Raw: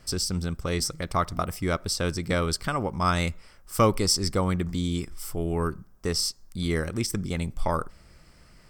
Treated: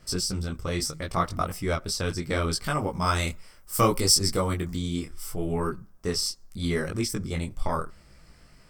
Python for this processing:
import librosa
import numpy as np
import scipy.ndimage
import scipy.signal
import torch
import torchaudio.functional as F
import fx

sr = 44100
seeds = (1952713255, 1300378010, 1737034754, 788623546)

y = fx.high_shelf(x, sr, hz=7600.0, db=10.0, at=(2.64, 4.76))
y = fx.detune_double(y, sr, cents=25)
y = y * librosa.db_to_amplitude(3.0)